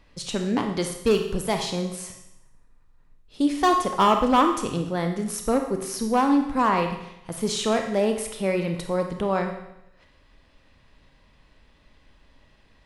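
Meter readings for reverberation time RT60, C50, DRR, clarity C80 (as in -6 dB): 0.80 s, 6.5 dB, 4.0 dB, 9.0 dB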